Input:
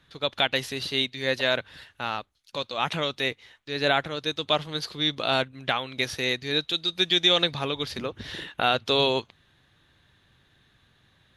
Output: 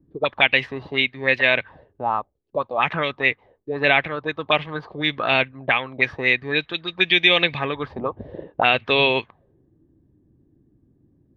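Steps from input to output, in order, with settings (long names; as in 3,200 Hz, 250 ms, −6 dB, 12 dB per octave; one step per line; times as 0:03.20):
notch filter 1,400 Hz, Q 7.2
envelope-controlled low-pass 300–2,400 Hz up, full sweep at −22.5 dBFS
level +3 dB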